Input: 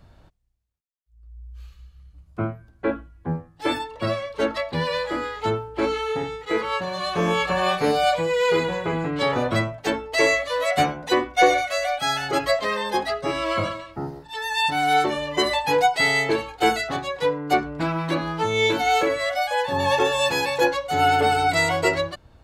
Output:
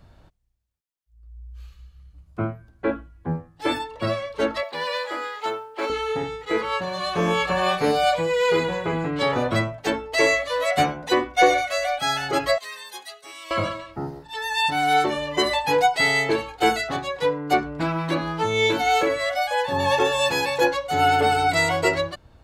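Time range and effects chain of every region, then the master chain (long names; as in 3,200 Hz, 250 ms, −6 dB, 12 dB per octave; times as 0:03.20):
0:04.63–0:05.90: high-pass filter 530 Hz + log-companded quantiser 8 bits
0:12.58–0:13.51: first difference + notch filter 5,200 Hz + comb filter 2.7 ms, depth 45%
whole clip: no processing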